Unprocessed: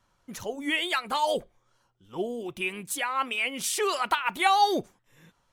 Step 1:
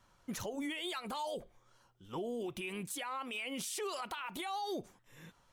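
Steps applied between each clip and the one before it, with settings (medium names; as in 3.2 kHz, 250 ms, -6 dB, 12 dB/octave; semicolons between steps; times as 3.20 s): dynamic bell 1.8 kHz, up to -5 dB, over -39 dBFS, Q 1.1; compression 10:1, threshold -32 dBFS, peak gain reduction 14.5 dB; peak limiter -33 dBFS, peak gain reduction 10.5 dB; trim +1.5 dB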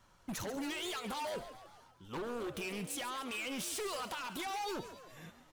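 wavefolder -36.5 dBFS; on a send: frequency-shifting echo 138 ms, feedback 55%, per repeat +77 Hz, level -12 dB; on the sum: trim +2 dB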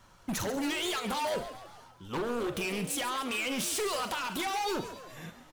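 doubling 42 ms -12.5 dB; trim +7 dB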